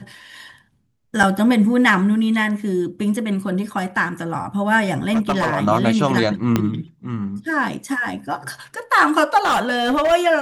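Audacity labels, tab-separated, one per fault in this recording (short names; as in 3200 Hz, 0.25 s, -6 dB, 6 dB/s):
1.230000	1.240000	gap 5.7 ms
5.120000	5.560000	clipped -14 dBFS
6.560000	6.560000	pop -4 dBFS
9.370000	10.130000	clipped -14 dBFS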